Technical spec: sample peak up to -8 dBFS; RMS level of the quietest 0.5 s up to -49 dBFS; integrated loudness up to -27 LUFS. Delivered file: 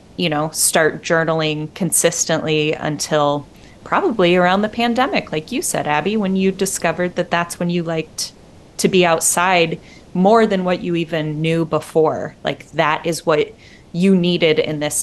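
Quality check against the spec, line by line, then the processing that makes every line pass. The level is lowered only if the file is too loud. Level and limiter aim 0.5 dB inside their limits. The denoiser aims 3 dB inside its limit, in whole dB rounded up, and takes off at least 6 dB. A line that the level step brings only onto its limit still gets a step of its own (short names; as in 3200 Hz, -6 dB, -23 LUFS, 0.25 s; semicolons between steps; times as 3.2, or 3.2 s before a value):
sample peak -1.5 dBFS: fail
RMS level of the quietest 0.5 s -43 dBFS: fail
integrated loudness -17.5 LUFS: fail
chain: gain -10 dB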